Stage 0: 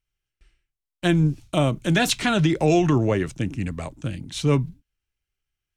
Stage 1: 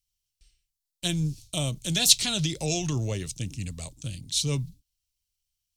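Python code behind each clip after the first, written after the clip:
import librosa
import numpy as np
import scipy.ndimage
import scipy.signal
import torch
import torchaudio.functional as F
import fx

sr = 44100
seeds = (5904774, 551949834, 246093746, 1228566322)

y = fx.curve_eq(x, sr, hz=(110.0, 340.0, 480.0, 1600.0, 4300.0), db=(0, -11, -7, -13, 12))
y = F.gain(torch.from_numpy(y), -4.0).numpy()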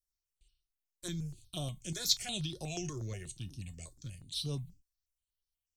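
y = fx.comb_fb(x, sr, f0_hz=360.0, decay_s=0.17, harmonics='all', damping=0.0, mix_pct=70)
y = fx.phaser_held(y, sr, hz=8.3, low_hz=760.0, high_hz=7400.0)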